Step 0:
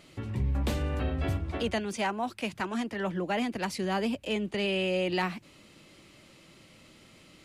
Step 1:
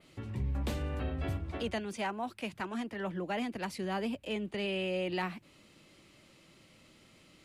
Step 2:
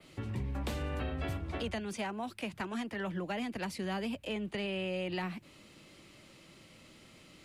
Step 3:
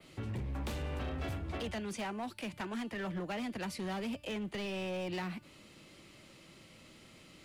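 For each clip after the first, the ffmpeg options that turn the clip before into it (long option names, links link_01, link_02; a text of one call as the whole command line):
ffmpeg -i in.wav -af "adynamicequalizer=threshold=0.00158:dfrequency=6100:dqfactor=1.2:tfrequency=6100:tqfactor=1.2:attack=5:release=100:ratio=0.375:range=2.5:mode=cutabove:tftype=bell,volume=-5dB" out.wav
ffmpeg -i in.wav -filter_complex "[0:a]acrossover=split=180|660|1700[link_01][link_02][link_03][link_04];[link_01]acompressor=threshold=-40dB:ratio=4[link_05];[link_02]acompressor=threshold=-44dB:ratio=4[link_06];[link_03]acompressor=threshold=-47dB:ratio=4[link_07];[link_04]acompressor=threshold=-46dB:ratio=4[link_08];[link_05][link_06][link_07][link_08]amix=inputs=4:normalize=0,volume=3.5dB" out.wav
ffmpeg -i in.wav -af "bandreject=frequency=295.5:width_type=h:width=4,bandreject=frequency=591:width_type=h:width=4,bandreject=frequency=886.5:width_type=h:width=4,bandreject=frequency=1182:width_type=h:width=4,bandreject=frequency=1477.5:width_type=h:width=4,bandreject=frequency=1773:width_type=h:width=4,bandreject=frequency=2068.5:width_type=h:width=4,bandreject=frequency=2364:width_type=h:width=4,bandreject=frequency=2659.5:width_type=h:width=4,bandreject=frequency=2955:width_type=h:width=4,bandreject=frequency=3250.5:width_type=h:width=4,bandreject=frequency=3546:width_type=h:width=4,bandreject=frequency=3841.5:width_type=h:width=4,bandreject=frequency=4137:width_type=h:width=4,bandreject=frequency=4432.5:width_type=h:width=4,bandreject=frequency=4728:width_type=h:width=4,bandreject=frequency=5023.5:width_type=h:width=4,bandreject=frequency=5319:width_type=h:width=4,bandreject=frequency=5614.5:width_type=h:width=4,bandreject=frequency=5910:width_type=h:width=4,bandreject=frequency=6205.5:width_type=h:width=4,bandreject=frequency=6501:width_type=h:width=4,bandreject=frequency=6796.5:width_type=h:width=4,bandreject=frequency=7092:width_type=h:width=4,bandreject=frequency=7387.5:width_type=h:width=4,bandreject=frequency=7683:width_type=h:width=4,bandreject=frequency=7978.5:width_type=h:width=4,bandreject=frequency=8274:width_type=h:width=4,bandreject=frequency=8569.5:width_type=h:width=4,bandreject=frequency=8865:width_type=h:width=4,bandreject=frequency=9160.5:width_type=h:width=4,bandreject=frequency=9456:width_type=h:width=4,bandreject=frequency=9751.5:width_type=h:width=4,bandreject=frequency=10047:width_type=h:width=4,bandreject=frequency=10342.5:width_type=h:width=4,bandreject=frequency=10638:width_type=h:width=4,bandreject=frequency=10933.5:width_type=h:width=4,bandreject=frequency=11229:width_type=h:width=4,bandreject=frequency=11524.5:width_type=h:width=4,volume=34dB,asoftclip=hard,volume=-34dB" out.wav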